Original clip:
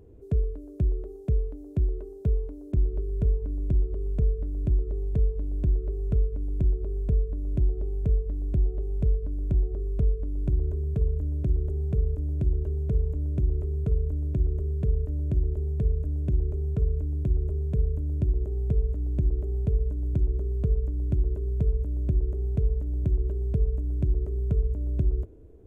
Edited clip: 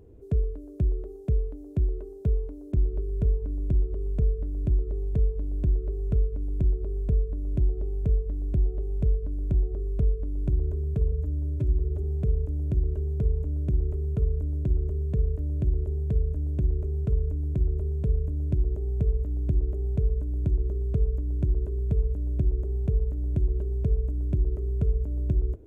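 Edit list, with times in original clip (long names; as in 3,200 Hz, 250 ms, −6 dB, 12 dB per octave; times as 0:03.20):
0:11.12–0:11.73: time-stretch 1.5×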